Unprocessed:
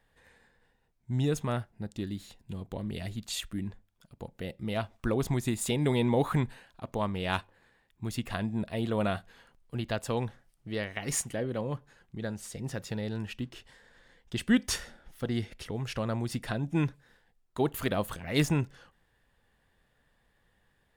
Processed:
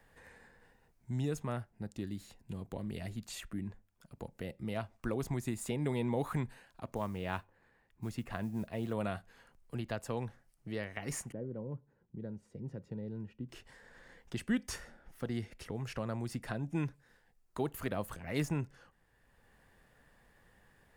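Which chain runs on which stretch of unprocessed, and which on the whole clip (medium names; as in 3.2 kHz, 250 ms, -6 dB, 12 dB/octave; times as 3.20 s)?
6.95–8.93 s: treble shelf 4.5 kHz -9.5 dB + modulation noise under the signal 31 dB
11.32–13.49 s: band-pass filter 200 Hz, Q 1.1 + comb 2.1 ms, depth 31%
whole clip: peaking EQ 3.5 kHz -6.5 dB 0.58 oct; three bands compressed up and down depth 40%; trim -6 dB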